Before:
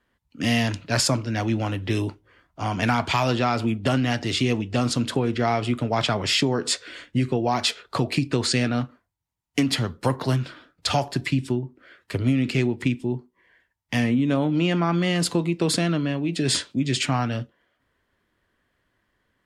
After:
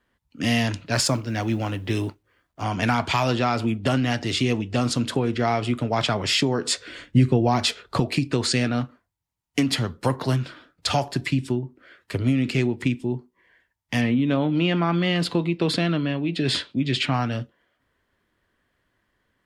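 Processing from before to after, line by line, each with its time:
0:00.93–0:02.63: mu-law and A-law mismatch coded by A
0:06.77–0:08.00: low-shelf EQ 250 Hz +9 dB
0:14.01–0:17.14: high shelf with overshoot 5,100 Hz −9 dB, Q 1.5

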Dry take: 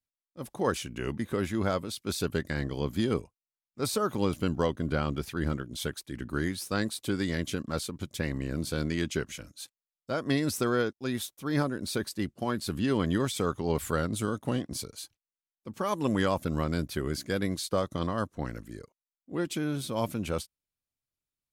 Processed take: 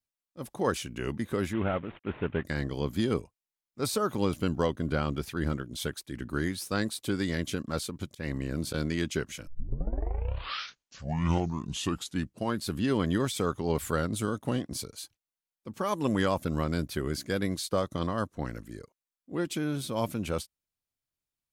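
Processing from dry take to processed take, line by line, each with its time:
0:01.53–0:02.44: variable-slope delta modulation 16 kbit/s
0:08.08–0:08.74: volume swells 144 ms
0:09.47: tape start 3.15 s

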